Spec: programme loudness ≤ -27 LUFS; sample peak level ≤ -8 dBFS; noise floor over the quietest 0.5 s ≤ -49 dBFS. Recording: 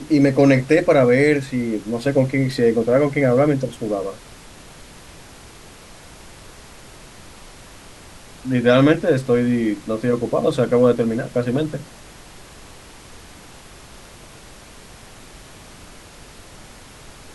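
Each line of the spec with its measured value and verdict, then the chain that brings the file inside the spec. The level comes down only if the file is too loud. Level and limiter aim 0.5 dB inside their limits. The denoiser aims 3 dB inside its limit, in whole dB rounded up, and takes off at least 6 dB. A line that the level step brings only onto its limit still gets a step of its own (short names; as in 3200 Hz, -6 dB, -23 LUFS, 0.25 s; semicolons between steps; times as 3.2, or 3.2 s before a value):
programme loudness -18.0 LUFS: fail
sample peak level -3.0 dBFS: fail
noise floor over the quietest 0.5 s -42 dBFS: fail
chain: gain -9.5 dB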